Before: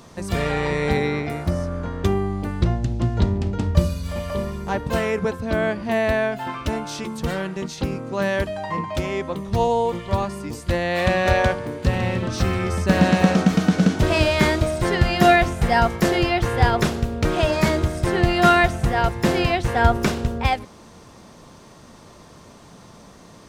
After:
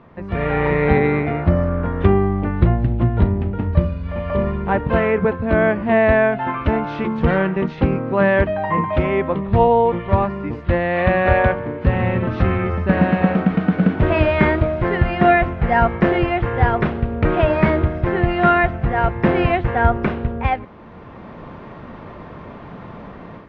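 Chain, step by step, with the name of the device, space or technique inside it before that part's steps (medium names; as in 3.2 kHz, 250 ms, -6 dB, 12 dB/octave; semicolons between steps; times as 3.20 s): action camera in a waterproof case (low-pass 2.4 kHz 24 dB/octave; level rider; trim -1 dB; AAC 48 kbps 22.05 kHz)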